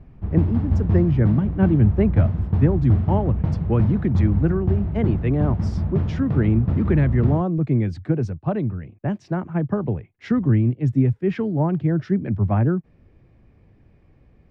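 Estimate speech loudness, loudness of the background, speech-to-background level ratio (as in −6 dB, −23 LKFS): −22.0 LKFS, −24.0 LKFS, 2.0 dB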